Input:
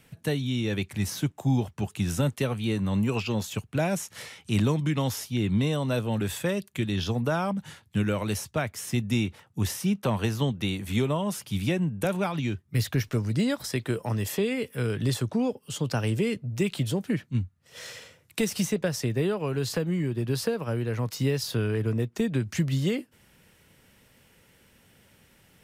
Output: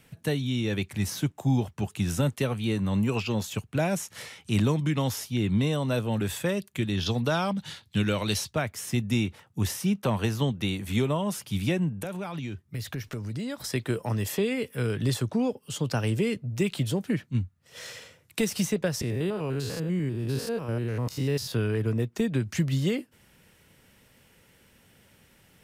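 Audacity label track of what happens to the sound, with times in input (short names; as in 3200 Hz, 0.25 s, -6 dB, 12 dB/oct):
7.060000	8.530000	bell 4000 Hz +11.5 dB 0.98 oct
11.920000	13.580000	compressor 3:1, threshold -32 dBFS
19.010000	21.520000	stepped spectrum every 0.1 s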